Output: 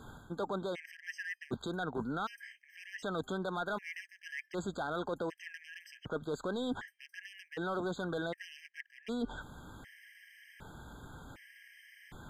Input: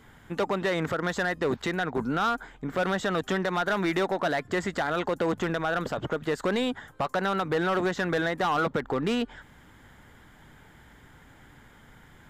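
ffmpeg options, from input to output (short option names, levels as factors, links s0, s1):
-af "areverse,acompressor=threshold=0.0158:ratio=16,areverse,afftfilt=real='re*gt(sin(2*PI*0.66*pts/sr)*(1-2*mod(floor(b*sr/1024/1600),2)),0)':imag='im*gt(sin(2*PI*0.66*pts/sr)*(1-2*mod(floor(b*sr/1024/1600),2)),0)':win_size=1024:overlap=0.75,volume=1.5"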